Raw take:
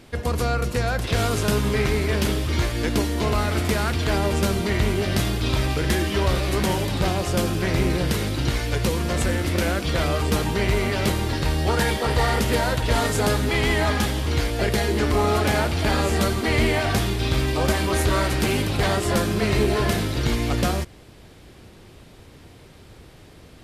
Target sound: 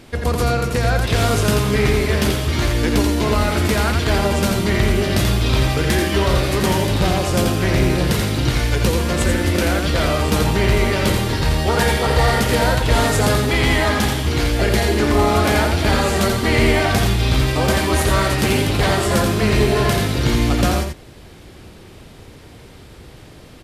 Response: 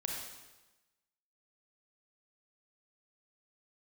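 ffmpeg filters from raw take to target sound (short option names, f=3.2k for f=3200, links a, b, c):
-af "acontrast=77,aecho=1:1:85:0.562,volume=-2.5dB"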